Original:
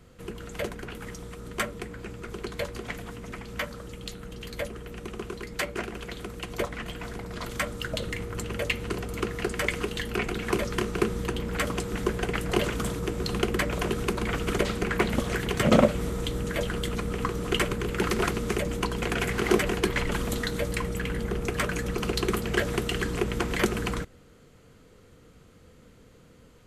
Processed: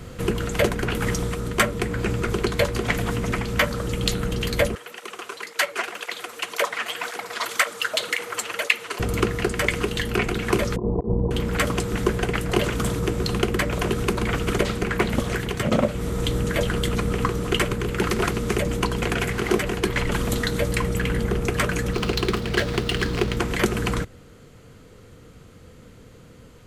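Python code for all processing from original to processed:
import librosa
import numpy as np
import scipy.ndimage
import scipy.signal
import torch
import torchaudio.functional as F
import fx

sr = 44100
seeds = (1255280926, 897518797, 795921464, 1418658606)

y = fx.chain(x, sr, fx.highpass(hz=750.0, slope=12),
    fx.flanger_cancel(hz=1.9, depth_ms=6.8), at=(4.75, 9.0))
y = fx.chain(y, sr, fx.steep_lowpass(hz=990.0, slope=72),
    fx.over_compress(threshold_db=-31.0, ratio=-0.5), at=(10.76, 11.31))
y = fx.chain(y, sr, fx.median_filter(points=9),
    fx.peak_eq(hz=4400.0, db=11.5, octaves=1.1), at=(21.93, 23.37))
y = fx.peak_eq(y, sr, hz=110.0, db=4.0, octaves=0.59)
y = fx.rider(y, sr, range_db=10, speed_s=0.5)
y = y * librosa.db_to_amplitude(5.0)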